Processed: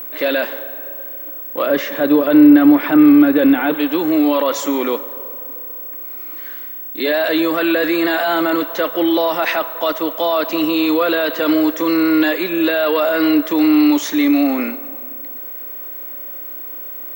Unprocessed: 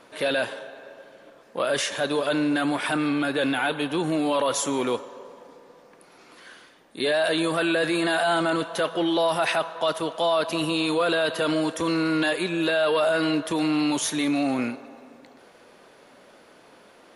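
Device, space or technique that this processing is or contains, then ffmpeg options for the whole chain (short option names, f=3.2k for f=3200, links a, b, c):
old television with a line whistle: -filter_complex "[0:a]asettb=1/sr,asplit=3[a][b][c];[a]atrim=end=1.664[d];[b]atrim=start=1.66:end=3.74,asetpts=PTS-STARTPTS,afade=t=in:d=0.004:c=qsin,afade=t=out:st=2.076:d=0.004:c=qsin,aemphasis=mode=reproduction:type=riaa[e];[c]atrim=start=3.736[f];[d][e]acrossfade=d=0.004:c1=hsin:c2=qsin[g];[g][f]acrossfade=d=0.004:c1=qsin:c2=hsin,highpass=f=200:w=0.5412,highpass=f=200:w=1.3066,equalizer=f=300:t=q:w=4:g=9,equalizer=f=540:t=q:w=4:g=4,equalizer=f=1.2k:t=q:w=4:g=4,equalizer=f=2k:t=q:w=4:g=7,lowpass=f=7.2k:w=0.5412,lowpass=f=7.2k:w=1.3066,aeval=exprs='val(0)+0.0316*sin(2*PI*15734*n/s)':c=same,volume=3dB"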